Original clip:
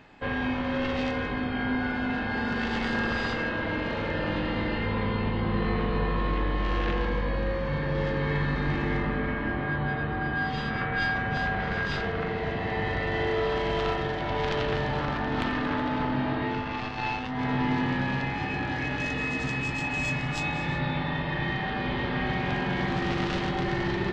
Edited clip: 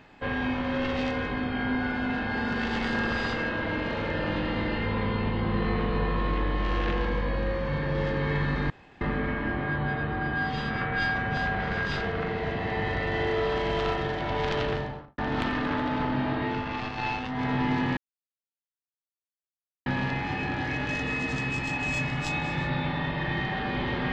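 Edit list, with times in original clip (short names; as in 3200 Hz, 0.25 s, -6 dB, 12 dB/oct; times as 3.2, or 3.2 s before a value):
8.7–9.01 room tone
14.62–15.18 studio fade out
17.97 insert silence 1.89 s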